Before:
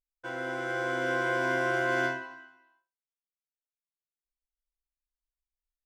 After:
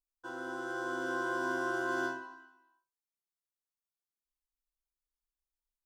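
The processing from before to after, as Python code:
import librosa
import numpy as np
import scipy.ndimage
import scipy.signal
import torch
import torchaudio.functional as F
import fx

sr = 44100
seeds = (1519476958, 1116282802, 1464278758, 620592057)

y = fx.fixed_phaser(x, sr, hz=590.0, stages=6)
y = y * 10.0 ** (-2.0 / 20.0)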